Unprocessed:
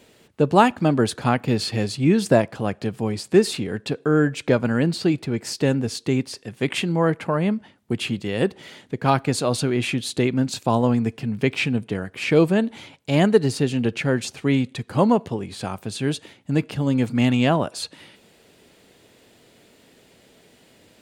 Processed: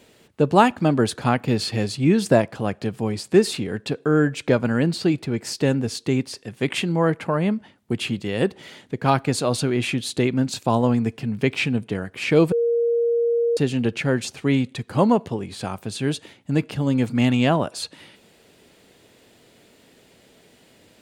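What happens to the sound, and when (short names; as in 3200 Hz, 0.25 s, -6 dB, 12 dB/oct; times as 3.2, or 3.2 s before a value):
12.52–13.57 bleep 469 Hz -17 dBFS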